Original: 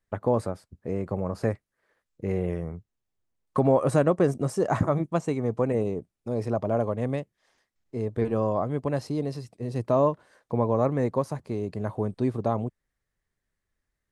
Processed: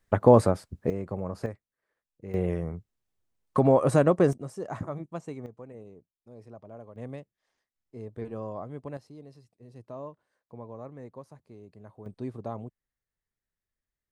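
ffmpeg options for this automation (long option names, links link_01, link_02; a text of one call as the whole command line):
ffmpeg -i in.wav -af "asetnsamples=nb_out_samples=441:pad=0,asendcmd='0.9 volume volume -4dB;1.46 volume volume -11dB;2.34 volume volume 0.5dB;4.33 volume volume -11dB;5.46 volume volume -20dB;6.96 volume volume -11dB;8.97 volume volume -18.5dB;12.06 volume volume -10dB',volume=7.5dB" out.wav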